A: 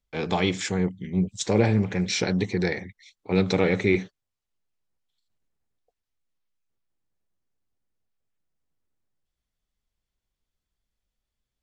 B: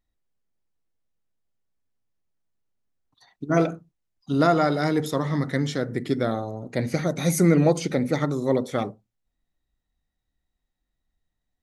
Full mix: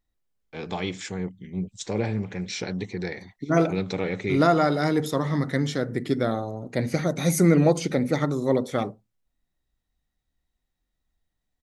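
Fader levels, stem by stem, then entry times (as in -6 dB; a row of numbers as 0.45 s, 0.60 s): -6.0 dB, 0.0 dB; 0.40 s, 0.00 s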